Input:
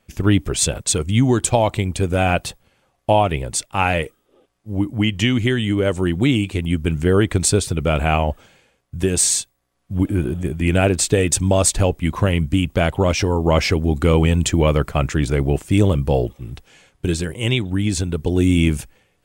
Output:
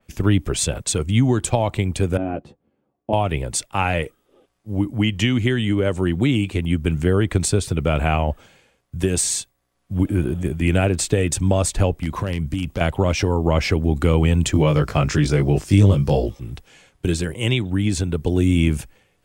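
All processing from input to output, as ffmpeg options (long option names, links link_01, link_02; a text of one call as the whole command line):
ffmpeg -i in.wav -filter_complex "[0:a]asettb=1/sr,asplit=3[link_01][link_02][link_03];[link_01]atrim=end=2.174[link_04];[link_02]atrim=start=2.17:end=3.13,asetpts=PTS-STARTPTS,afade=type=in:duration=0.004:curve=qsin,afade=type=out:start_time=0.956:duration=0.004:curve=qsin,bandpass=frequency=280:width_type=q:width=1.6,asplit=2[link_05][link_06];[link_06]adelay=14,volume=-5.5dB[link_07];[link_05][link_07]amix=inputs=2:normalize=0,atrim=end_sample=42336[link_08];[link_03]atrim=start=3.126[link_09];[link_04][link_08]acrossfade=duration=0.004:curve1=hsin:curve2=qsin[link_10];[link_10][link_09]acrossfade=duration=0.004:curve1=qsin:curve2=hsin,asettb=1/sr,asplit=3[link_11][link_12][link_13];[link_11]atrim=end=12.014[link_14];[link_12]atrim=start=12.01:end=12.81,asetpts=PTS-STARTPTS,afade=type=in:duration=0.004:curve=qsin,afade=type=out:start_time=0.796:duration=0.004:curve=qsin,acompressor=threshold=-18dB:ratio=16:attack=3.2:release=140:knee=1:detection=peak,aeval=exprs='0.168*(abs(mod(val(0)/0.168+3,4)-2)-1)':channel_layout=same[link_15];[link_13]atrim=start=12.806[link_16];[link_14][link_15]acrossfade=duration=0.004:curve1=hsin:curve2=qsin[link_17];[link_17][link_16]acrossfade=duration=0.004:curve1=qsin:curve2=hsin,asettb=1/sr,asplit=3[link_18][link_19][link_20];[link_18]atrim=end=14.534[link_21];[link_19]atrim=start=14.53:end=16.4,asetpts=PTS-STARTPTS,afade=type=in:duration=0.004:curve=qsin,afade=type=out:start_time=1.866:duration=0.004:curve=qsin,equalizer=frequency=5200:width_type=o:width=0.65:gain=10.5,asplit=2[link_22][link_23];[link_23]adelay=20,volume=-2dB[link_24];[link_22][link_24]amix=inputs=2:normalize=0,atrim=end_sample=82467[link_25];[link_20]atrim=start=16.396[link_26];[link_21][link_25]acrossfade=duration=0.004:curve1=hsin:curve2=qsin[link_27];[link_27][link_26]acrossfade=duration=0.004:curve1=qsin:curve2=hsin,acrossover=split=160[link_28][link_29];[link_29]acompressor=threshold=-17dB:ratio=3[link_30];[link_28][link_30]amix=inputs=2:normalize=0,adynamicequalizer=threshold=0.0141:dfrequency=3300:dqfactor=0.7:tfrequency=3300:tqfactor=0.7:attack=5:release=100:ratio=0.375:range=2:mode=cutabove:tftype=highshelf" out.wav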